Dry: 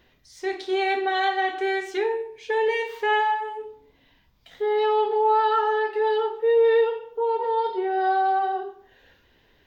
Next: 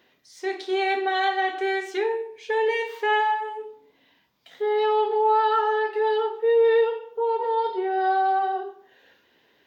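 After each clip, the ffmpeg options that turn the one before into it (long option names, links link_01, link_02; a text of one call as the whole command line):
ffmpeg -i in.wav -af "highpass=220" out.wav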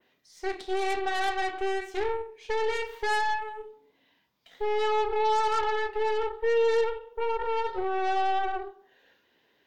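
ffmpeg -i in.wav -af "aeval=exprs='0.266*(cos(1*acos(clip(val(0)/0.266,-1,1)))-cos(1*PI/2))+0.0376*(cos(8*acos(clip(val(0)/0.266,-1,1)))-cos(8*PI/2))':channel_layout=same,adynamicequalizer=threshold=0.00794:dfrequency=5100:dqfactor=0.78:tfrequency=5100:tqfactor=0.78:attack=5:release=100:ratio=0.375:range=2:mode=cutabove:tftype=bell,volume=-5.5dB" out.wav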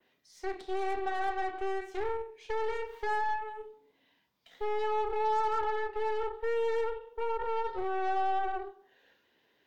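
ffmpeg -i in.wav -filter_complex "[0:a]acrossover=split=290|550|1700[link_01][link_02][link_03][link_04];[link_02]asoftclip=type=hard:threshold=-35.5dB[link_05];[link_04]acompressor=threshold=-48dB:ratio=6[link_06];[link_01][link_05][link_03][link_06]amix=inputs=4:normalize=0,volume=-3dB" out.wav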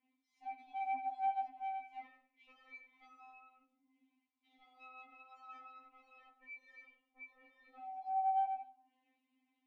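ffmpeg -i in.wav -filter_complex "[0:a]asplit=3[link_01][link_02][link_03];[link_01]bandpass=frequency=300:width_type=q:width=8,volume=0dB[link_04];[link_02]bandpass=frequency=870:width_type=q:width=8,volume=-6dB[link_05];[link_03]bandpass=frequency=2240:width_type=q:width=8,volume=-9dB[link_06];[link_04][link_05][link_06]amix=inputs=3:normalize=0,afftfilt=real='re*3.46*eq(mod(b,12),0)':imag='im*3.46*eq(mod(b,12),0)':win_size=2048:overlap=0.75,volume=5.5dB" out.wav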